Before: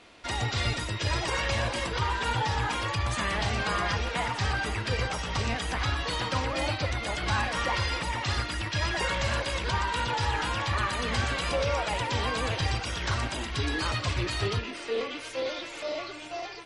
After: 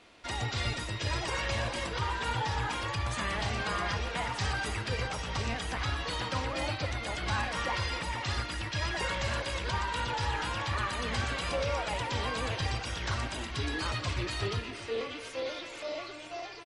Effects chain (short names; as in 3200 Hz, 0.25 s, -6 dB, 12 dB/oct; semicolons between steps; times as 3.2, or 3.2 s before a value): 4.32–4.84 high shelf 6200 Hz +7.5 dB; on a send: feedback echo 0.268 s, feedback 52%, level -16.5 dB; on the sum: gain -4 dB